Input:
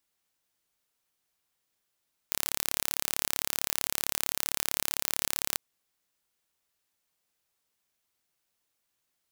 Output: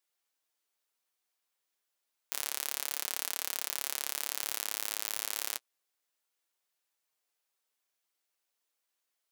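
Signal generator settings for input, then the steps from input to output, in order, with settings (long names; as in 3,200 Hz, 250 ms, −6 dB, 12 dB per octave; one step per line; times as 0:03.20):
impulse train 35.5 per second, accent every 0, −1.5 dBFS 3.25 s
high-pass filter 370 Hz 12 dB per octave
flanger 0.3 Hz, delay 5.4 ms, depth 3.9 ms, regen −39%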